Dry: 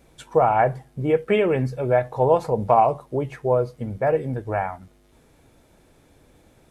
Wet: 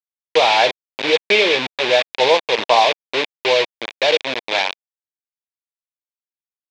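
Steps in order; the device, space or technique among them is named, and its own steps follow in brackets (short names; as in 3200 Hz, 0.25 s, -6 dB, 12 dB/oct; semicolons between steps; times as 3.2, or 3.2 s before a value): hand-held game console (bit-crush 4-bit; speaker cabinet 490–5000 Hz, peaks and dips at 720 Hz -5 dB, 1300 Hz -9 dB, 2400 Hz +8 dB, 3600 Hz +9 dB); gain +6.5 dB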